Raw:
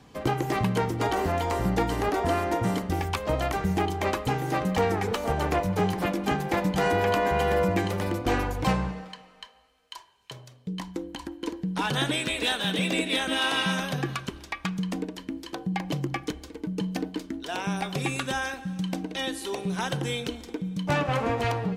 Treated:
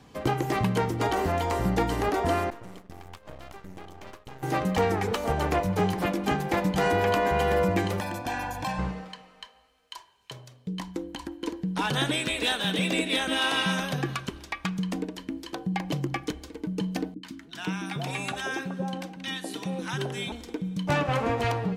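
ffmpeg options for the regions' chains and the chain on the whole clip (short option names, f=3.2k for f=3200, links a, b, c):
-filter_complex "[0:a]asettb=1/sr,asplit=3[a][b][c];[a]atrim=end=2.504[d];[b]atrim=start=2.5:end=4.43,asetpts=PTS-STARTPTS,afade=t=in:d=0.004:c=qsin,afade=t=out:st=1.926:d=0.004:c=qsin,agate=range=-33dB:threshold=-24dB:ratio=3:release=100:detection=peak,acompressor=threshold=-37dB:ratio=5:attack=3.2:release=140:knee=1:detection=peak,aeval=exprs='max(val(0),0)':c=same[e];[c]atrim=start=4.426[f];[d][e]acrossfade=d=0.004:c1=hsin:c2=qsin[g];[g][f]acrossfade=d=0.004:c1=qsin:c2=hsin,asettb=1/sr,asplit=3[h][i][j];[h]atrim=end=8.004[k];[i]atrim=start=8:end=8.79,asetpts=PTS-STARTPTS,afade=t=in:d=0.004:c=qsin,afade=t=out:st=0.786:d=0.004:c=qsin,highpass=f=330:p=1,aecho=1:1:1.2:0.88,atrim=end_sample=34839,acompressor=threshold=-28dB:ratio=3:attack=3.2:release=140:knee=1:detection=peak[l];[j]atrim=start=8.786[m];[k][l]acrossfade=d=0.004:c1=hsin:c2=qsin[n];[n][m]acrossfade=d=0.004:c1=qsin:c2=hsin,asettb=1/sr,asplit=3[o][p][q];[o]atrim=end=17.144[r];[p]atrim=start=17.14:end=20.32,asetpts=PTS-STARTPTS,afade=t=in:d=0.004:c=qsin,afade=t=out:st=3.176:d=0.004:c=qsin,highpass=110,equalizer=f=11k:t=o:w=2.5:g=-4,acrossover=split=260|910[s][t][u];[u]adelay=90[v];[t]adelay=510[w];[s][w][v]amix=inputs=3:normalize=0,atrim=end_sample=140238[x];[q]atrim=start=20.316[y];[r][x]acrossfade=d=0.004:c1=hsin:c2=qsin[z];[z][y]acrossfade=d=0.004:c1=qsin:c2=hsin"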